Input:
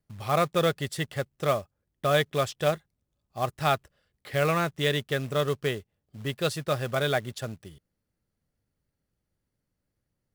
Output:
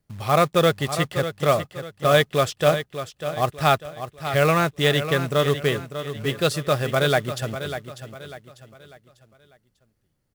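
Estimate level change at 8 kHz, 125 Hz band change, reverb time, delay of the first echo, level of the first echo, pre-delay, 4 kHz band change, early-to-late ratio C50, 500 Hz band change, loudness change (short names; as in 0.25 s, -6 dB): +6.5 dB, +6.5 dB, none, 0.596 s, -10.5 dB, none, +6.5 dB, none, +6.5 dB, +6.0 dB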